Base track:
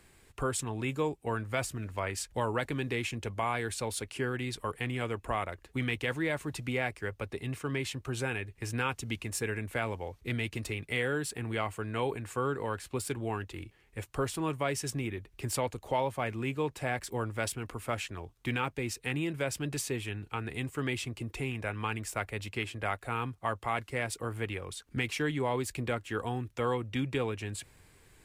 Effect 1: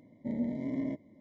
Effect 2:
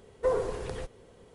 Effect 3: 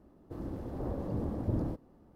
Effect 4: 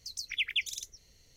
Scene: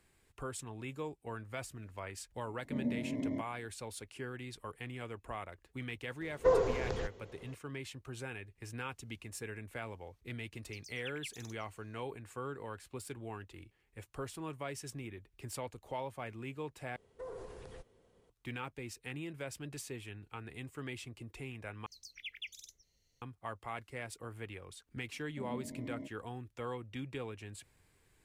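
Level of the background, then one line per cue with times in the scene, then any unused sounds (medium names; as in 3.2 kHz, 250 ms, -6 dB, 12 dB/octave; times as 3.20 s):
base track -10 dB
2.46 s: add 1 -3 dB
6.21 s: add 2 + steep low-pass 7.3 kHz 96 dB/octave
10.67 s: add 4 -15.5 dB
16.96 s: replace with 2 -13 dB + peak limiter -24.5 dBFS
21.86 s: replace with 4 -14 dB
25.12 s: add 1 -10.5 dB
not used: 3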